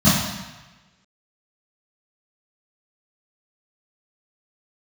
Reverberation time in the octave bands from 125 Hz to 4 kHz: 1.2, 0.95, 1.1, 1.2, 1.3, 1.1 s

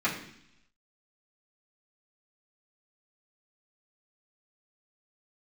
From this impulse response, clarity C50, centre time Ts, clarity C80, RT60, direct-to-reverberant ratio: 7.5 dB, 26 ms, 10.5 dB, 0.70 s, -10.0 dB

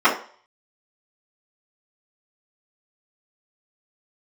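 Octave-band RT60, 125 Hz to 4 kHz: 0.40, 0.35, 0.45, 0.45, 0.40, 0.45 s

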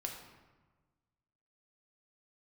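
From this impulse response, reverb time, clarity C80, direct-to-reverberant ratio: 1.3 s, 6.5 dB, 1.0 dB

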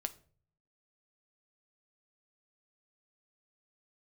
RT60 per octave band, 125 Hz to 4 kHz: 0.90, 0.60, 0.50, 0.40, 0.35, 0.30 s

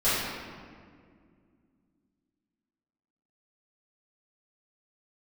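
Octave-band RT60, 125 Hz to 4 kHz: 3.0, 3.4, 2.3, 1.8, 1.6, 1.2 s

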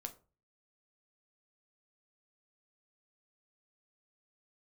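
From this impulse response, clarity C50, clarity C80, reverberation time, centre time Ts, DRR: 16.0 dB, 21.0 dB, 0.35 s, 7 ms, 5.5 dB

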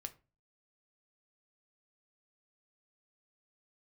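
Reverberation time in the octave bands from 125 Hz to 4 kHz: 0.50, 0.45, 0.35, 0.30, 0.25, 0.20 s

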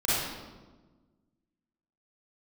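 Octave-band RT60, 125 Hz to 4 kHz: 1.9, 1.9, 1.5, 1.2, 0.90, 0.90 s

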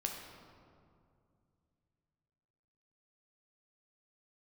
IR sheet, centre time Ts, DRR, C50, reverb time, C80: 63 ms, 1.0 dB, 3.5 dB, 2.4 s, 5.0 dB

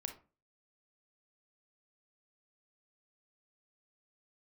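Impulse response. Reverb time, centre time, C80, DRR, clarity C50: 0.35 s, 12 ms, 17.0 dB, 5.5 dB, 10.0 dB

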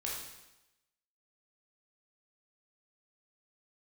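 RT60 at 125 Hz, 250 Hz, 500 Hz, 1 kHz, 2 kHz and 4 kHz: 0.90, 0.90, 0.95, 0.95, 0.95, 0.95 s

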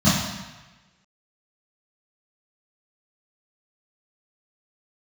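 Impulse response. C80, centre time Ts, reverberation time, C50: 4.0 dB, 75 ms, 1.2 s, 0.5 dB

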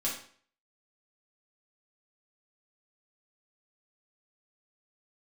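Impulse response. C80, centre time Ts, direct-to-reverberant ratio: 9.5 dB, 35 ms, -6.0 dB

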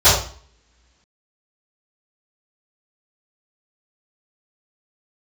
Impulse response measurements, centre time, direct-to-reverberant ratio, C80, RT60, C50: 45 ms, -18.5 dB, 7.0 dB, 0.45 s, 2.5 dB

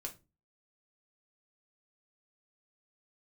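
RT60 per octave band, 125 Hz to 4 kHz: 0.45, 0.45, 0.30, 0.25, 0.20, 0.20 s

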